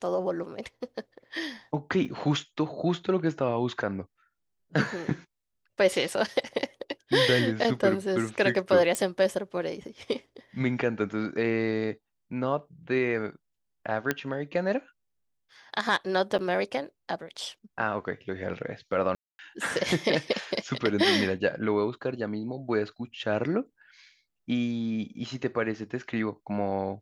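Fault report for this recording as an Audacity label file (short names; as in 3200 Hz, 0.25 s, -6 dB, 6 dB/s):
2.050000	2.050000	gap 3.3 ms
8.950000	8.950000	pop -14 dBFS
14.110000	14.110000	pop -11 dBFS
16.380000	16.390000	gap 9 ms
19.150000	19.390000	gap 0.24 s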